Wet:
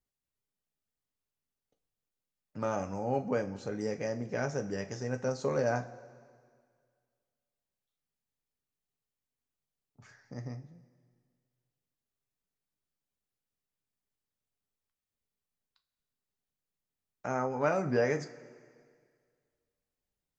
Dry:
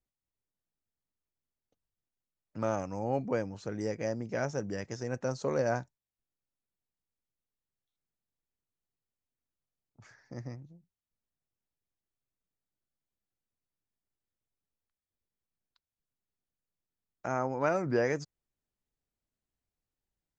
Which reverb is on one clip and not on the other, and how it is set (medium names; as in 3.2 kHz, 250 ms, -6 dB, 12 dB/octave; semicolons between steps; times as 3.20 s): two-slope reverb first 0.26 s, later 2 s, from -18 dB, DRR 5 dB; trim -1 dB